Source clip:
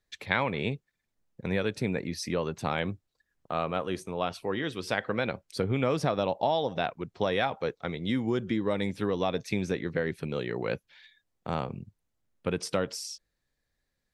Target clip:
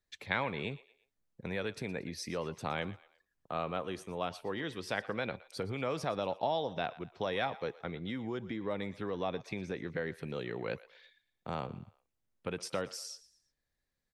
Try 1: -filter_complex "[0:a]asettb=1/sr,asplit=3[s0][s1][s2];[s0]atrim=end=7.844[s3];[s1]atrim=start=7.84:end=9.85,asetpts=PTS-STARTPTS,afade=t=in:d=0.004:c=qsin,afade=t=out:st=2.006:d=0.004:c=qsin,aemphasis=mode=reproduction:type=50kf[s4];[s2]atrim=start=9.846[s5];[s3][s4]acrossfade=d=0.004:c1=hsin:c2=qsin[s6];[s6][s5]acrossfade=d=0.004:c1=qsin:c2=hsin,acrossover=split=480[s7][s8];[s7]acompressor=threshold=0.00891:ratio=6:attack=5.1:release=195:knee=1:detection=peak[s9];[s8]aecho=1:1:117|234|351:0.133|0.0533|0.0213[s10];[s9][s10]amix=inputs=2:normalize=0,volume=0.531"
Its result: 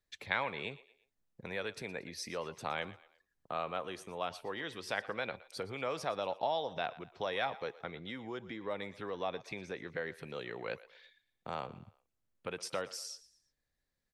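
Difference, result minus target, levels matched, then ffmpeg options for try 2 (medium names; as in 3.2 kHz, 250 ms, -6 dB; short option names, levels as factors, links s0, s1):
compression: peak gain reduction +9 dB
-filter_complex "[0:a]asettb=1/sr,asplit=3[s0][s1][s2];[s0]atrim=end=7.844[s3];[s1]atrim=start=7.84:end=9.85,asetpts=PTS-STARTPTS,afade=t=in:d=0.004:c=qsin,afade=t=out:st=2.006:d=0.004:c=qsin,aemphasis=mode=reproduction:type=50kf[s4];[s2]atrim=start=9.846[s5];[s3][s4]acrossfade=d=0.004:c1=hsin:c2=qsin[s6];[s6][s5]acrossfade=d=0.004:c1=qsin:c2=hsin,acrossover=split=480[s7][s8];[s7]acompressor=threshold=0.0299:ratio=6:attack=5.1:release=195:knee=1:detection=peak[s9];[s8]aecho=1:1:117|234|351:0.133|0.0533|0.0213[s10];[s9][s10]amix=inputs=2:normalize=0,volume=0.531"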